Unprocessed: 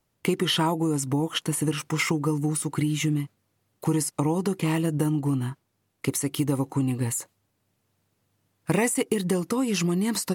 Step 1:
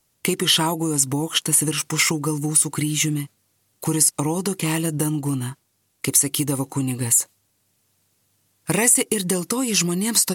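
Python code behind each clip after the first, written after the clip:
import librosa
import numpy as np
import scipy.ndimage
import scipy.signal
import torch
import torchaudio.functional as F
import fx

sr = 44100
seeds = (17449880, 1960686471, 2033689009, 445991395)

y = fx.peak_eq(x, sr, hz=9800.0, db=12.5, octaves=2.7)
y = F.gain(torch.from_numpy(y), 1.0).numpy()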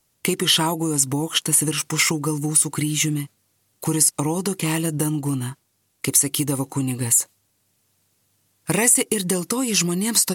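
y = x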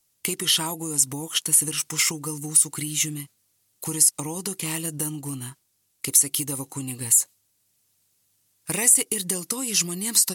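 y = fx.high_shelf(x, sr, hz=2800.0, db=10.0)
y = F.gain(torch.from_numpy(y), -9.5).numpy()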